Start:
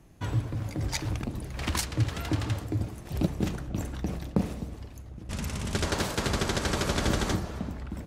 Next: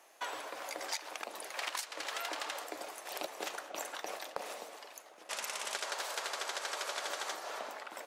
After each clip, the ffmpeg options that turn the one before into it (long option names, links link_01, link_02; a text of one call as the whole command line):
ffmpeg -i in.wav -af "highpass=frequency=570:width=0.5412,highpass=frequency=570:width=1.3066,acompressor=threshold=-40dB:ratio=10,volume=5dB" out.wav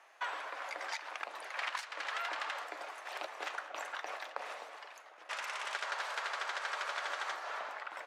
ffmpeg -i in.wav -filter_complex "[0:a]asplit=2[link_01][link_02];[link_02]asoftclip=type=tanh:threshold=-33.5dB,volume=-7dB[link_03];[link_01][link_03]amix=inputs=2:normalize=0,bandpass=frequency=1500:width_type=q:width=0.99:csg=0,volume=1.5dB" out.wav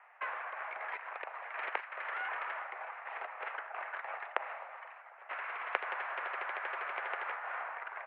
ffmpeg -i in.wav -af "aeval=exprs='0.1*(cos(1*acos(clip(val(0)/0.1,-1,1)))-cos(1*PI/2))+0.0398*(cos(2*acos(clip(val(0)/0.1,-1,1)))-cos(2*PI/2))+0.0447*(cos(3*acos(clip(val(0)/0.1,-1,1)))-cos(3*PI/2))':channel_layout=same,highpass=frequency=390:width_type=q:width=0.5412,highpass=frequency=390:width_type=q:width=1.307,lowpass=frequency=2300:width_type=q:width=0.5176,lowpass=frequency=2300:width_type=q:width=0.7071,lowpass=frequency=2300:width_type=q:width=1.932,afreqshift=82,volume=11.5dB" out.wav